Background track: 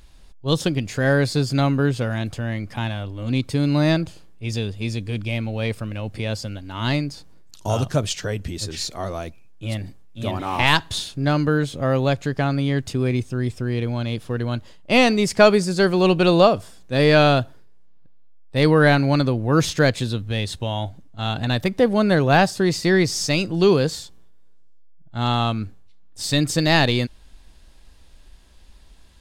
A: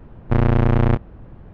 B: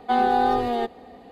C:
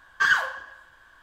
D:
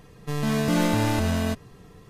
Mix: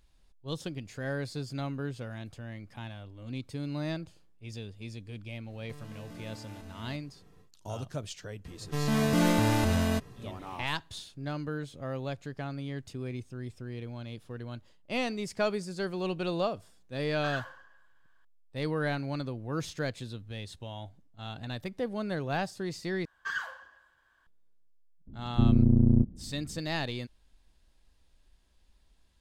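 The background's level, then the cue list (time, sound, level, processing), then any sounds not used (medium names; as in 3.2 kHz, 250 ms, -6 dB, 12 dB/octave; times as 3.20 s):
background track -16 dB
5.42 s: add D -11.5 dB, fades 0.10 s + compression 10:1, threshold -32 dBFS
8.45 s: add D -2.5 dB
17.03 s: add C -17.5 dB
23.05 s: replace with C -14 dB
25.07 s: add A -8 dB + resonant low-pass 240 Hz, resonance Q 2.4
not used: B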